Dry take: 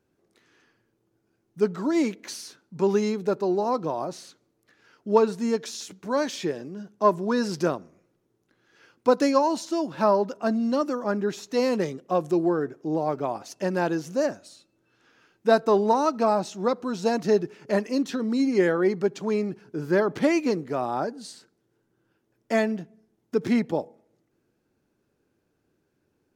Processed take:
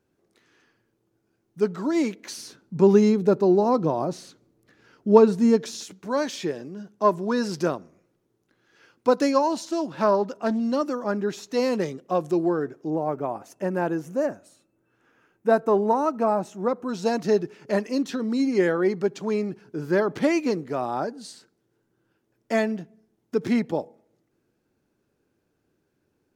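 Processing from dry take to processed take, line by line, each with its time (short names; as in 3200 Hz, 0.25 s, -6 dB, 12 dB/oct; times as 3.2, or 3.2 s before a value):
2.37–5.84 low shelf 450 Hz +10 dB
9.52–10.6 Doppler distortion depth 0.15 ms
12.9–16.89 bell 4400 Hz -14 dB 1.2 oct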